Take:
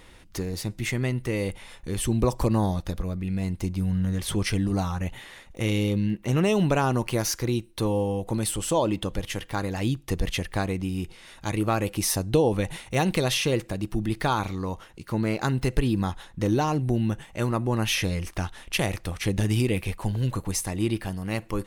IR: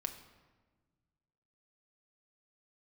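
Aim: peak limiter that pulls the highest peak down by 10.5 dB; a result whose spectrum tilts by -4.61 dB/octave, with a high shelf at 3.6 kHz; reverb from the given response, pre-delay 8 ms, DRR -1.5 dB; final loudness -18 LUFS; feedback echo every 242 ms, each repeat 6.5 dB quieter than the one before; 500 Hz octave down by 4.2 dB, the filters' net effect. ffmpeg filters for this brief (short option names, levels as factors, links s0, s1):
-filter_complex "[0:a]equalizer=f=500:t=o:g=-5.5,highshelf=f=3600:g=8.5,alimiter=limit=0.158:level=0:latency=1,aecho=1:1:242|484|726|968|1210|1452:0.473|0.222|0.105|0.0491|0.0231|0.0109,asplit=2[s0][s1];[1:a]atrim=start_sample=2205,adelay=8[s2];[s1][s2]afir=irnorm=-1:irlink=0,volume=1.26[s3];[s0][s3]amix=inputs=2:normalize=0,volume=1.78"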